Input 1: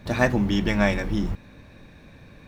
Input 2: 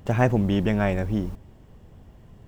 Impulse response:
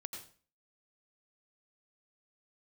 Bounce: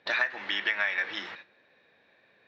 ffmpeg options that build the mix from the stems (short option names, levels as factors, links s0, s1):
-filter_complex "[0:a]equalizer=f=1900:w=0.39:g=10,volume=0.75,asplit=2[s0][s1];[s1]volume=0.141[s2];[1:a]volume=0.335,asplit=2[s3][s4];[s4]apad=whole_len=109361[s5];[s0][s5]sidechaingate=range=0.0224:threshold=0.00398:ratio=16:detection=peak[s6];[2:a]atrim=start_sample=2205[s7];[s2][s7]afir=irnorm=-1:irlink=0[s8];[s6][s3][s8]amix=inputs=3:normalize=0,acrossover=split=1100|2400[s9][s10][s11];[s9]acompressor=threshold=0.0158:ratio=4[s12];[s10]acompressor=threshold=0.0891:ratio=4[s13];[s11]acompressor=threshold=0.02:ratio=4[s14];[s12][s13][s14]amix=inputs=3:normalize=0,highpass=470,equalizer=f=510:t=q:w=4:g=4,equalizer=f=1100:t=q:w=4:g=-3,equalizer=f=1800:t=q:w=4:g=5,equalizer=f=3900:t=q:w=4:g=4,lowpass=f=4900:w=0.5412,lowpass=f=4900:w=1.3066,acompressor=threshold=0.0631:ratio=6"